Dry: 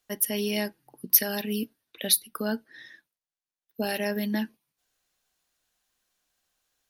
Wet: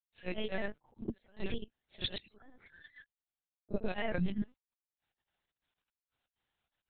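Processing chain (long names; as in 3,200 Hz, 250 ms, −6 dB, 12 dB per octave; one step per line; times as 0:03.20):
noise gate −45 dBFS, range −10 dB
downward compressor 8 to 1, threshold −36 dBFS, peak gain reduction 22 dB
gate pattern "..xx.xxx.xx." 152 BPM −24 dB
granular cloud 100 ms, grains 20 per second, spray 100 ms, pitch spread up and down by 3 semitones
linear-prediction vocoder at 8 kHz pitch kept
echo ahead of the sound 33 ms −13.5 dB
level +7 dB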